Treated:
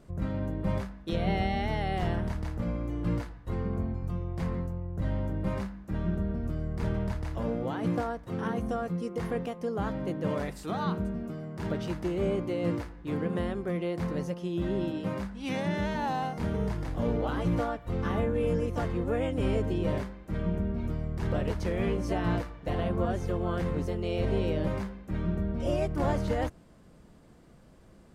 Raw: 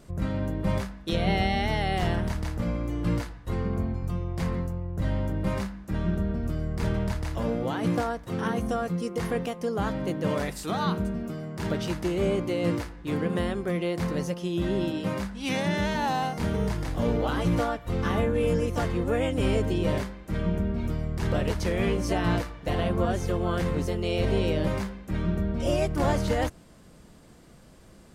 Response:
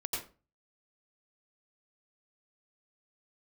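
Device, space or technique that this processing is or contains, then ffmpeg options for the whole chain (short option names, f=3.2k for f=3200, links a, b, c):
behind a face mask: -af "highshelf=f=2.5k:g=-8,volume=-3dB"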